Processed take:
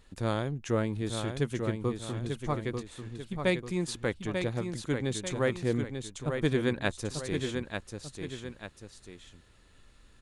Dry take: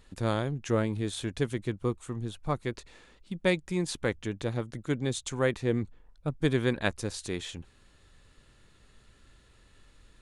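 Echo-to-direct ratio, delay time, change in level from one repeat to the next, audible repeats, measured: -5.0 dB, 892 ms, -7.0 dB, 2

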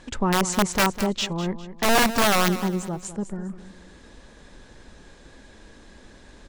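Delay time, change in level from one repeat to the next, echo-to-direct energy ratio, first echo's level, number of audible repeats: 202 ms, -9.5 dB, -12.5 dB, -13.0 dB, 3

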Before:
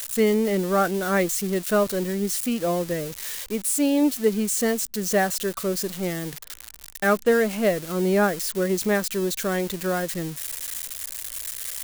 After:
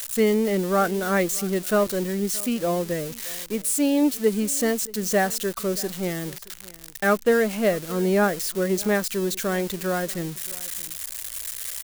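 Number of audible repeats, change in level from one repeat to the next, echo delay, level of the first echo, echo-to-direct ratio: 1, no regular repeats, 624 ms, -21.5 dB, -21.5 dB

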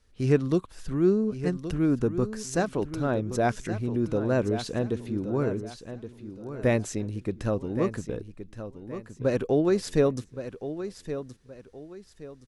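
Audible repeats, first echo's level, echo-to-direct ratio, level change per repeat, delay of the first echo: 3, -11.0 dB, -10.5 dB, -10.0 dB, 1121 ms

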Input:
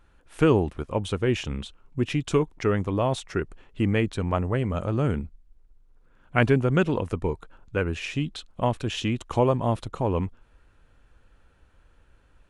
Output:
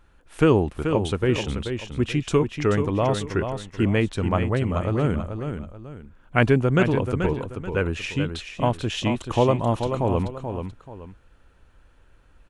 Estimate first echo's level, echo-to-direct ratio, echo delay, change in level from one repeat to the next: -7.5 dB, -7.0 dB, 433 ms, -9.5 dB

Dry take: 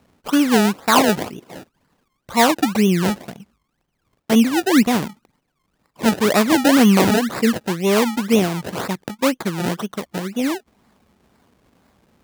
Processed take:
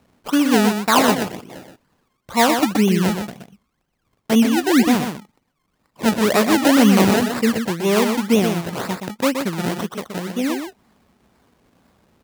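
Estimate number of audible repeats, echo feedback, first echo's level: 1, no regular repeats, -6.5 dB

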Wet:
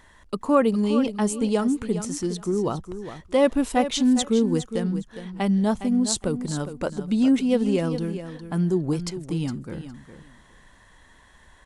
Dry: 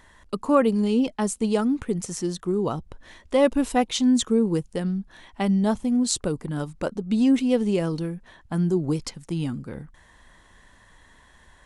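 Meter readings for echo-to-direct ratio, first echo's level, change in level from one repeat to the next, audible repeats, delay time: -11.0 dB, -11.0 dB, -15.5 dB, 2, 410 ms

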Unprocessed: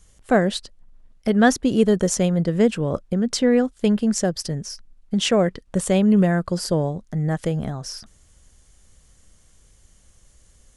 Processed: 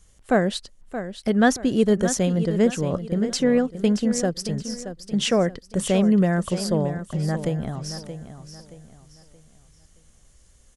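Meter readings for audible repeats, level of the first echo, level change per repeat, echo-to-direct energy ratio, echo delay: 3, -11.0 dB, -9.5 dB, -10.5 dB, 625 ms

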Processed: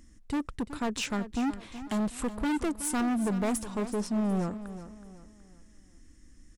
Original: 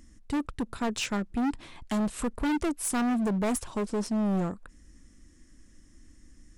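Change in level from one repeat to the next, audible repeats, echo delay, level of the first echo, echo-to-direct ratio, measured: -8.5 dB, 3, 372 ms, -13.0 dB, -12.5 dB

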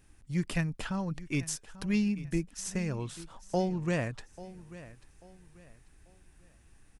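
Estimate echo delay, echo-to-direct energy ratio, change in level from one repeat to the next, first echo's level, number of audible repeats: 840 ms, -16.5 dB, -10.0 dB, -17.0 dB, 2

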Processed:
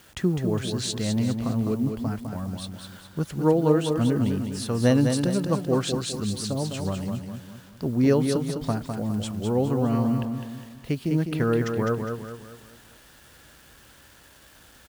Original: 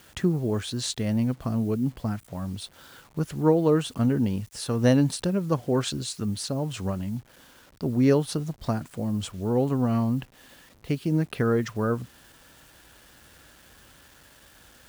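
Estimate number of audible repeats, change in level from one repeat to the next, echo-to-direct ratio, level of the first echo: 4, -7.5 dB, -5.0 dB, -6.0 dB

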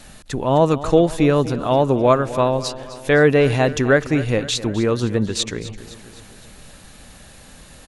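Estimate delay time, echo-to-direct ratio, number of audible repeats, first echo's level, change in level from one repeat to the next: 257 ms, -14.0 dB, 4, -15.5 dB, -5.0 dB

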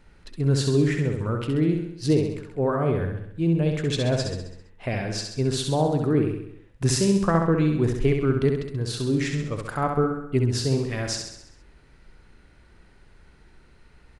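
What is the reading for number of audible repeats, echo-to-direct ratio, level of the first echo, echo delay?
6, -3.5 dB, -5.0 dB, 66 ms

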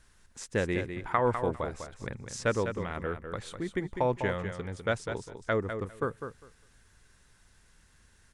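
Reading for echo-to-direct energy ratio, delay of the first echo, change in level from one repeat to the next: -8.0 dB, 201 ms, -16.0 dB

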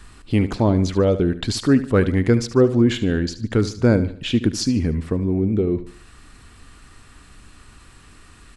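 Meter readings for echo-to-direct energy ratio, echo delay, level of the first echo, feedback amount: -13.5 dB, 74 ms, -14.0 dB, 39%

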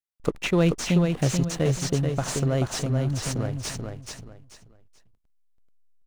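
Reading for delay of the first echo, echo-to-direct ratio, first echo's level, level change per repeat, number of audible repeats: 434 ms, -4.5 dB, -5.0 dB, -11.5 dB, 3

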